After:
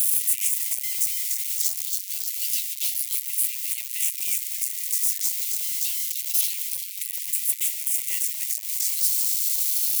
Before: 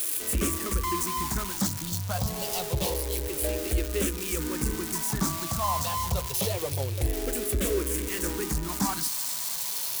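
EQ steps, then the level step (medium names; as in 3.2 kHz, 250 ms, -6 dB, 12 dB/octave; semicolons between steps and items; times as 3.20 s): Chebyshev high-pass 2 kHz, order 6; treble shelf 7.1 kHz +11 dB; 0.0 dB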